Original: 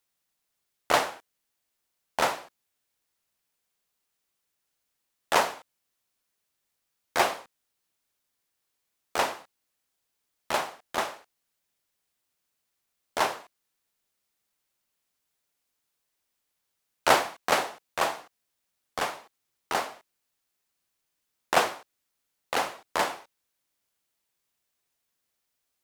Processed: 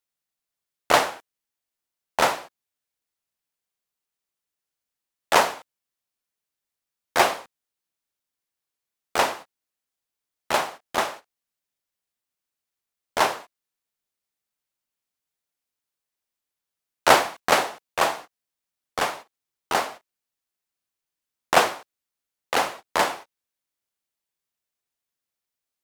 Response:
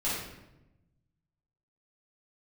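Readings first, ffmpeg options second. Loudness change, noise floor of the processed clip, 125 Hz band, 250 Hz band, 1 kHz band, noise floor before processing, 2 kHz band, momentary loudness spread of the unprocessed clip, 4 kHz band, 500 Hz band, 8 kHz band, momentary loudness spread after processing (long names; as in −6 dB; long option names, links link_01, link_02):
+5.0 dB, below −85 dBFS, +5.0 dB, +5.0 dB, +5.0 dB, −80 dBFS, +5.0 dB, 15 LU, +5.0 dB, +5.0 dB, +5.0 dB, 15 LU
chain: -af "agate=range=-12dB:threshold=-43dB:ratio=16:detection=peak,volume=5dB"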